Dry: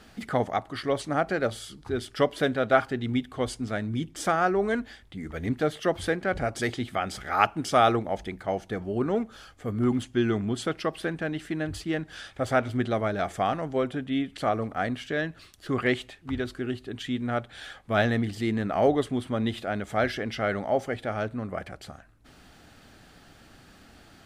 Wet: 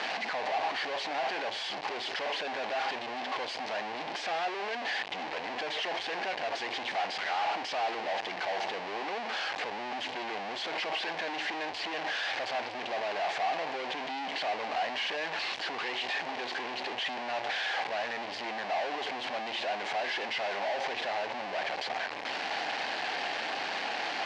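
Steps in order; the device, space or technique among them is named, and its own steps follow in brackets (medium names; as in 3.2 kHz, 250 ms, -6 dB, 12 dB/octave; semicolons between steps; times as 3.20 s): home computer beeper (one-bit comparator; cabinet simulation 690–4100 Hz, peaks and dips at 780 Hz +6 dB, 1.3 kHz -10 dB, 3.5 kHz -5 dB)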